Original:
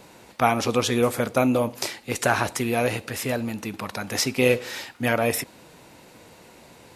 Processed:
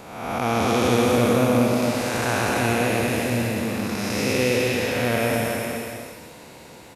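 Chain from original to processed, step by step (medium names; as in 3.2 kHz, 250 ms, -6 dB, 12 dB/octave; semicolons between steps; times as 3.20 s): spectral blur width 438 ms; bouncing-ball echo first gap 240 ms, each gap 0.75×, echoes 5; trim +5 dB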